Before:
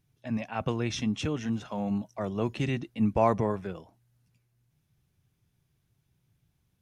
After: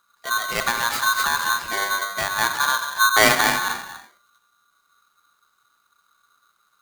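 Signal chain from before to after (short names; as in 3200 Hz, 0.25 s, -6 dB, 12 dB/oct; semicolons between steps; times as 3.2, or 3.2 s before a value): tracing distortion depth 0.12 ms; non-linear reverb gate 0.3 s flat, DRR 5 dB; polarity switched at an audio rate 1300 Hz; gain +7 dB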